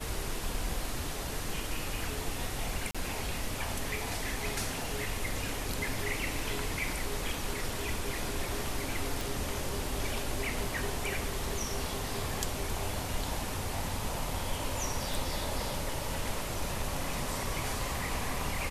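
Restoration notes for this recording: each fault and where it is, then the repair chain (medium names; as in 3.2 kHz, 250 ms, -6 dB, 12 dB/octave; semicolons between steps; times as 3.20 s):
2.91–2.95 s: dropout 36 ms
9.21 s: pop
15.14 s: pop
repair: de-click; interpolate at 2.91 s, 36 ms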